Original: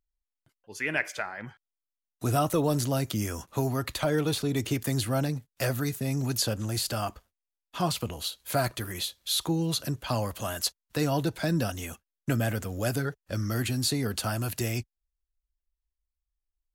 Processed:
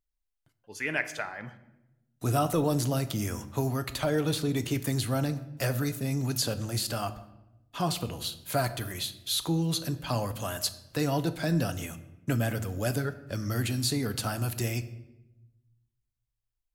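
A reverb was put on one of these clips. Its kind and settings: shoebox room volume 400 m³, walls mixed, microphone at 0.34 m; gain -1.5 dB

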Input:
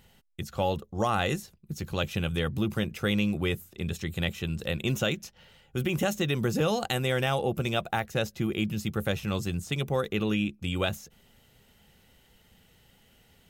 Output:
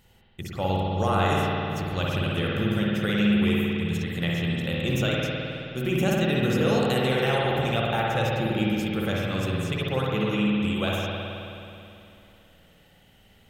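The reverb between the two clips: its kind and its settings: spring tank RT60 2.8 s, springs 53 ms, chirp 20 ms, DRR -4.5 dB; gain -1.5 dB

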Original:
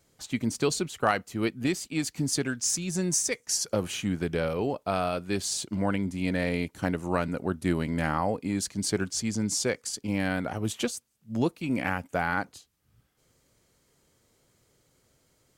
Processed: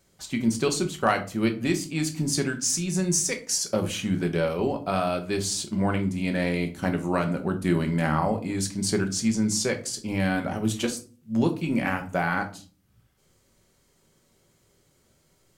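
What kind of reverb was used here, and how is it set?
shoebox room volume 240 m³, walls furnished, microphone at 1.1 m; gain +1 dB

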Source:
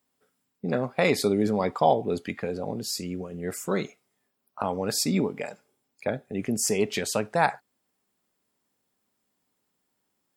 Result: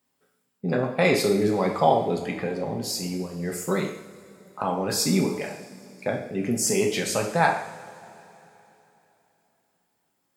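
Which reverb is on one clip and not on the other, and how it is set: two-slope reverb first 0.66 s, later 3.4 s, from -18 dB, DRR 0.5 dB

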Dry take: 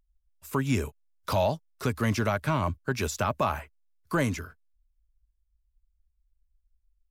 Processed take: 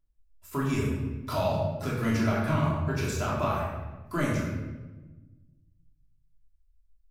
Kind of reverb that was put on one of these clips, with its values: shoebox room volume 760 m³, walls mixed, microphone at 3 m; gain -8 dB

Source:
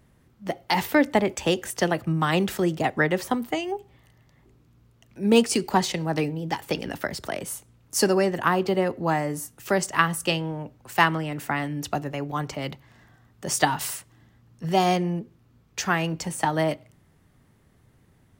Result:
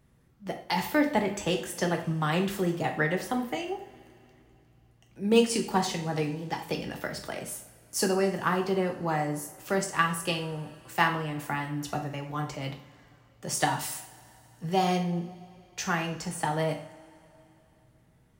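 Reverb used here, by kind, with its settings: two-slope reverb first 0.45 s, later 3.1 s, from -22 dB, DRR 2.5 dB; gain -6.5 dB

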